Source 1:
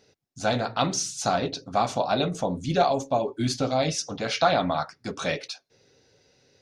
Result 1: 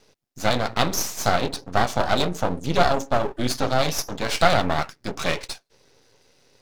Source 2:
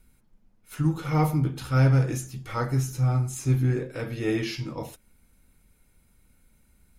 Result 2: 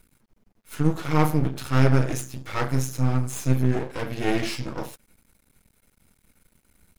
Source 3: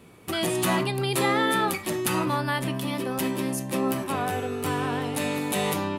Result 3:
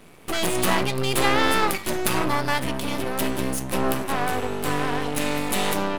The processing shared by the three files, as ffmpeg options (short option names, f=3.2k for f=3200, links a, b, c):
-af "lowshelf=f=82:g=-8,aeval=exprs='max(val(0),0)':c=same,volume=7dB"